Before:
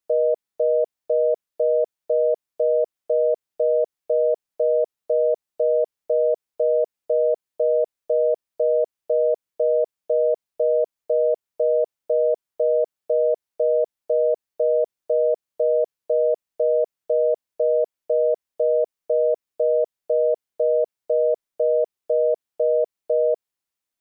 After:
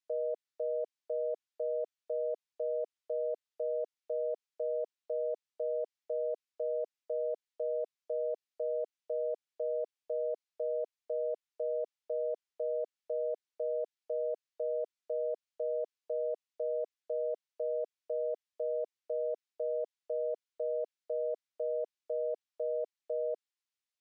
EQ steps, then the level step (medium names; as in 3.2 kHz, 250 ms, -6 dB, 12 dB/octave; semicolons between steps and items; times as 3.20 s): high-pass 330 Hz 24 dB/octave; distance through air 82 m; peaking EQ 560 Hz -14.5 dB 2.8 oct; 0.0 dB